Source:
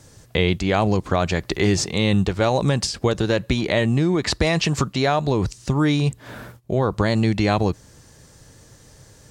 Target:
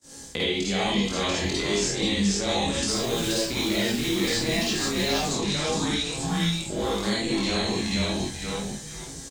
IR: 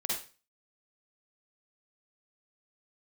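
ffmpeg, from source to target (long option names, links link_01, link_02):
-filter_complex "[0:a]equalizer=frequency=125:width_type=o:width=1:gain=-10,equalizer=frequency=250:width_type=o:width=1:gain=7,equalizer=frequency=4000:width_type=o:width=1:gain=4,equalizer=frequency=8000:width_type=o:width=1:gain=10,asplit=5[link_01][link_02][link_03][link_04][link_05];[link_02]adelay=479,afreqshift=-120,volume=-3.5dB[link_06];[link_03]adelay=958,afreqshift=-240,volume=-13.7dB[link_07];[link_04]adelay=1437,afreqshift=-360,volume=-23.8dB[link_08];[link_05]adelay=1916,afreqshift=-480,volume=-34dB[link_09];[link_01][link_06][link_07][link_08][link_09]amix=inputs=5:normalize=0,agate=range=-23dB:threshold=-46dB:ratio=16:detection=peak,asplit=2[link_10][link_11];[link_11]adelay=25,volume=-4dB[link_12];[link_10][link_12]amix=inputs=2:normalize=0,flanger=delay=17.5:depth=4.6:speed=0.32,asettb=1/sr,asplit=3[link_13][link_14][link_15];[link_13]atrim=end=2.894[link_16];[link_14]atrim=start=2.89:end=5.22,asetpts=PTS-STARTPTS,afade=type=in:duration=0.004:curve=qsin,afade=type=out:start_time=2.326:duration=0.004:curve=qsin,acrusher=bits=4:mix=0:aa=0.5[link_17];[link_15]atrim=start=5.216[link_18];[link_16][link_17]acrossfade=duration=0.004:curve1=hsin:curve2=qsin[link_19];[link_19][link_18]acrossfade=duration=0.004:curve1=qsin:curve2=hsin,acrossover=split=88|2000[link_20][link_21][link_22];[link_20]acompressor=threshold=-44dB:ratio=4[link_23];[link_21]acompressor=threshold=-31dB:ratio=4[link_24];[link_22]acompressor=threshold=-33dB:ratio=4[link_25];[link_23][link_24][link_25]amix=inputs=3:normalize=0[link_26];[1:a]atrim=start_sample=2205[link_27];[link_26][link_27]afir=irnorm=-1:irlink=0"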